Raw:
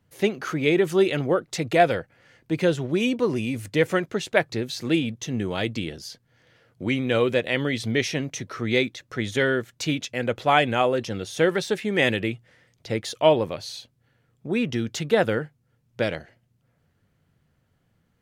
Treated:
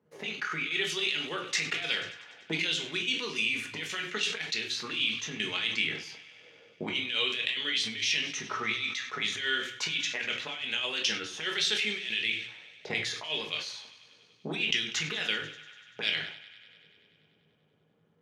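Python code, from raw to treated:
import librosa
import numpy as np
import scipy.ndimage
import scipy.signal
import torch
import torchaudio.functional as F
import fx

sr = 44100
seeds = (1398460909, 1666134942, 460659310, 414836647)

y = fx.auto_wah(x, sr, base_hz=510.0, top_hz=3100.0, q=2.2, full_db=-21.5, direction='up')
y = fx.transient(y, sr, attack_db=5, sustain_db=0)
y = fx.over_compress(y, sr, threshold_db=-37.0, ratio=-1.0)
y = fx.graphic_eq_15(y, sr, hz=(250, 630, 6300), db=(-4, -11, 6))
y = fx.echo_thinned(y, sr, ms=97, feedback_pct=78, hz=420.0, wet_db=-19.0)
y = fx.dynamic_eq(y, sr, hz=1300.0, q=1.0, threshold_db=-51.0, ratio=4.0, max_db=-5)
y = scipy.signal.sosfilt(scipy.signal.butter(2, 89.0, 'highpass', fs=sr, output='sos'), y)
y = fx.room_shoebox(y, sr, seeds[0], volume_m3=290.0, walls='furnished', distance_m=1.4)
y = fx.sustainer(y, sr, db_per_s=83.0)
y = y * librosa.db_to_amplitude(5.5)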